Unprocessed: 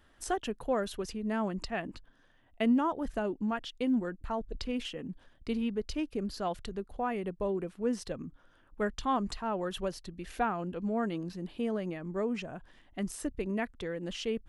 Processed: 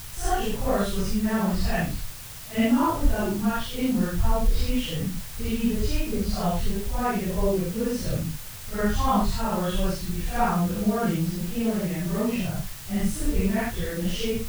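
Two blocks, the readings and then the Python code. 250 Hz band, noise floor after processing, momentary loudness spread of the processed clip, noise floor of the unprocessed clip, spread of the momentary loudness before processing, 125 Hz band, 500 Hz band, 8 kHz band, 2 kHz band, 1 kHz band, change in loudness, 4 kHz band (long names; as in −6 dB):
+8.0 dB, −38 dBFS, 7 LU, −64 dBFS, 9 LU, +15.0 dB, +5.0 dB, +12.5 dB, +7.5 dB, +7.0 dB, +8.0 dB, +8.5 dB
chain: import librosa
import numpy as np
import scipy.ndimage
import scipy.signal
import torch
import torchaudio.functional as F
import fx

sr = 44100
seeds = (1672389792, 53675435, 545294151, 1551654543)

y = fx.phase_scramble(x, sr, seeds[0], window_ms=200)
y = fx.quant_dither(y, sr, seeds[1], bits=8, dither='triangular')
y = fx.low_shelf_res(y, sr, hz=180.0, db=14.0, q=1.5)
y = F.gain(torch.from_numpy(y), 7.0).numpy()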